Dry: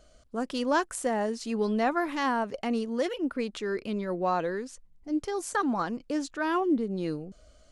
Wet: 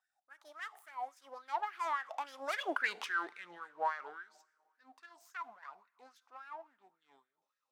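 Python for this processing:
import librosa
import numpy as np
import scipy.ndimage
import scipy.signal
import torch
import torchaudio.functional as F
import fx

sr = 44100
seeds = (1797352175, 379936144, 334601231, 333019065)

p1 = fx.self_delay(x, sr, depth_ms=0.13)
p2 = fx.doppler_pass(p1, sr, speed_mps=59, closest_m=11.0, pass_at_s=2.82)
p3 = fx.backlash(p2, sr, play_db=-46.0)
p4 = p2 + (p3 * 10.0 ** (-4.0 / 20.0))
p5 = fx.rev_double_slope(p4, sr, seeds[0], early_s=0.74, late_s=3.1, knee_db=-18, drr_db=16.0)
p6 = fx.filter_lfo_highpass(p5, sr, shape='sine', hz=3.6, low_hz=730.0, high_hz=1700.0, q=6.4)
y = p6 * 10.0 ** (-3.0 / 20.0)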